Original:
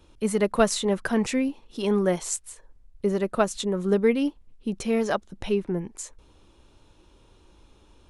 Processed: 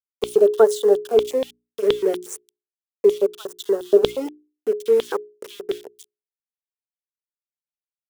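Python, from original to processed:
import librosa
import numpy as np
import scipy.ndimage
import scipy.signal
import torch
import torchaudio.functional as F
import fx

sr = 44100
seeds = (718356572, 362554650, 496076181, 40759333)

y = fx.spec_quant(x, sr, step_db=30)
y = np.where(np.abs(y) >= 10.0 ** (-29.0 / 20.0), y, 0.0)
y = fx.peak_eq(y, sr, hz=3600.0, db=-11.0, octaves=1.2)
y = fx.filter_lfo_highpass(y, sr, shape='square', hz=4.2, low_hz=420.0, high_hz=3400.0, q=7.6)
y = fx.hum_notches(y, sr, base_hz=60, count=7)
y = fx.filter_lfo_notch(y, sr, shape='sine', hz=0.34, low_hz=640.0, high_hz=2400.0, q=2.4)
y = y * librosa.db_to_amplitude(-1.5)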